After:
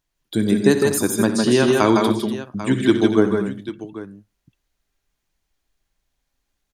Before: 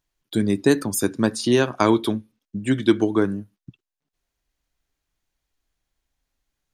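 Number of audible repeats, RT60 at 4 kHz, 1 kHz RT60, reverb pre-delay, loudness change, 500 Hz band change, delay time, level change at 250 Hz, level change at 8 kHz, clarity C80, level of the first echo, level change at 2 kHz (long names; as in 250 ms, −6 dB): 5, no reverb audible, no reverb audible, no reverb audible, +3.0 dB, +4.0 dB, 62 ms, +3.5 dB, +3.5 dB, no reverb audible, −14.0 dB, +3.5 dB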